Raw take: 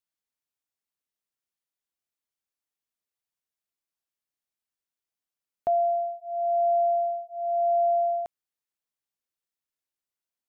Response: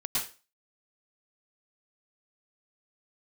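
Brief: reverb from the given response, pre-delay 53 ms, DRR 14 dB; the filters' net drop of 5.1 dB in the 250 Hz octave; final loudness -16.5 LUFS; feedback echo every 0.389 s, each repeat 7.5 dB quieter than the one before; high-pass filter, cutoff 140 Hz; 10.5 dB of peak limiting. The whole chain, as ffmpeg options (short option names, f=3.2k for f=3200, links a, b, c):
-filter_complex "[0:a]highpass=140,equalizer=f=250:t=o:g=-6.5,alimiter=level_in=5.5dB:limit=-24dB:level=0:latency=1,volume=-5.5dB,aecho=1:1:389|778|1167|1556|1945:0.422|0.177|0.0744|0.0312|0.0131,asplit=2[a][b];[1:a]atrim=start_sample=2205,adelay=53[c];[b][c]afir=irnorm=-1:irlink=0,volume=-20.5dB[d];[a][d]amix=inputs=2:normalize=0,volume=18dB"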